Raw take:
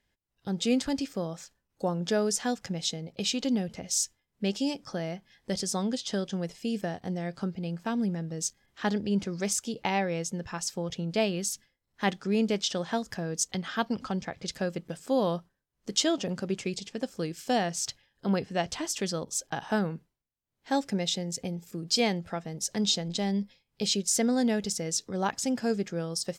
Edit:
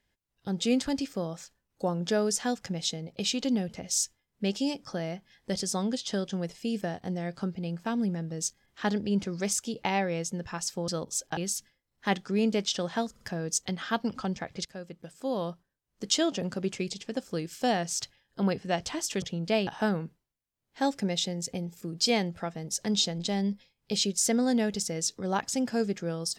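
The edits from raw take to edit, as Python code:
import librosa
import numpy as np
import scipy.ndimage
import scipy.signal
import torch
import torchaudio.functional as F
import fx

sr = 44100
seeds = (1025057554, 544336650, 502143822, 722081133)

y = fx.edit(x, sr, fx.swap(start_s=10.88, length_s=0.45, other_s=19.08, other_length_s=0.49),
    fx.stutter(start_s=13.07, slice_s=0.05, count=3),
    fx.fade_in_from(start_s=14.51, length_s=1.57, floor_db=-12.5), tone=tone)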